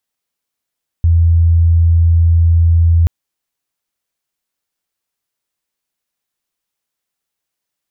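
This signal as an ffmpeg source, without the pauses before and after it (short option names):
-f lavfi -i "sine=f=83.7:d=2.03:r=44100,volume=11.56dB"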